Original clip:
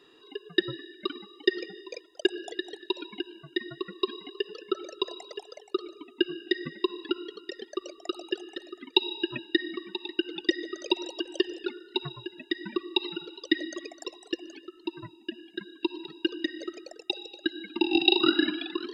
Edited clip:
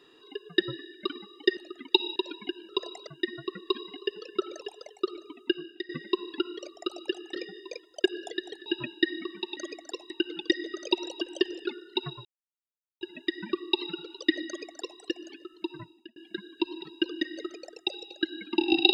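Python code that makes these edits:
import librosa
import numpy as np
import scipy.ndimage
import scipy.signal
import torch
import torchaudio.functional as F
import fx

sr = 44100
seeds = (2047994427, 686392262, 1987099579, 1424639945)

y = fx.edit(x, sr, fx.swap(start_s=1.57, length_s=1.3, other_s=8.59, other_length_s=0.59),
    fx.move(start_s=4.94, length_s=0.38, to_s=3.4),
    fx.fade_out_to(start_s=6.14, length_s=0.46, floor_db=-15.0),
    fx.cut(start_s=7.3, length_s=0.52),
    fx.insert_silence(at_s=12.24, length_s=0.76),
    fx.duplicate(start_s=13.7, length_s=0.53, to_s=10.09),
    fx.fade_out_span(start_s=15.0, length_s=0.39), tone=tone)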